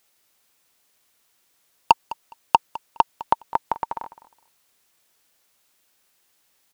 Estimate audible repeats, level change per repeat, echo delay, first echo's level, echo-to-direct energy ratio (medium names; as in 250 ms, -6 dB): 2, -14.5 dB, 207 ms, -18.0 dB, -18.0 dB